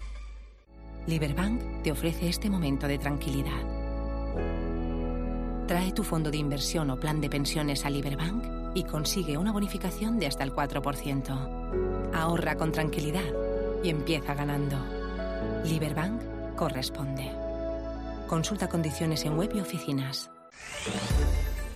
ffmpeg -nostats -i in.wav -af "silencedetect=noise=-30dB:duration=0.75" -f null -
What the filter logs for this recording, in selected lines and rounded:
silence_start: 0.00
silence_end: 1.02 | silence_duration: 1.02